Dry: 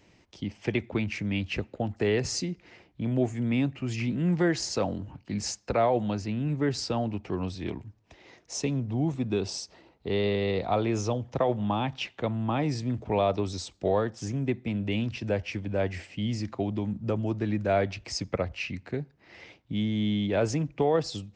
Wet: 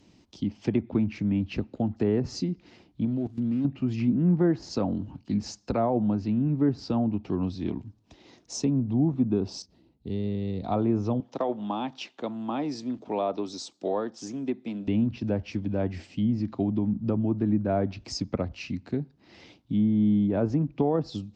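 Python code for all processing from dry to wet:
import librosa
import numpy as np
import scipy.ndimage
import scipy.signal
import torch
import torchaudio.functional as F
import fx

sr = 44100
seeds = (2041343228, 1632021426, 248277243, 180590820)

y = fx.chain(x, sr, fx.median_filter(points=25),
    fx.high_shelf(hz=7100.0, db=10.0),
    fx.level_steps(step_db=16), at=(3.05, 3.65))
y = fx.chain(y, sr, fx.median_filter(points=5),
    fx.curve_eq(hz=(130.0, 1200.0, 2000.0), db=(0, -16, -11)), at=(9.62, 10.64))
y = fx.chain(y, sr, fx.highpass(hz=340.0, slope=12),
    fx.clip_hard(threshold_db=-15.0), at=(11.2, 14.88))
y = fx.graphic_eq(y, sr, hz=(250, 500, 2000, 4000), db=(8, -4, -8, 4))
y = fx.env_lowpass_down(y, sr, base_hz=1500.0, full_db=-20.5)
y = fx.dynamic_eq(y, sr, hz=3200.0, q=1.5, threshold_db=-51.0, ratio=4.0, max_db=-4)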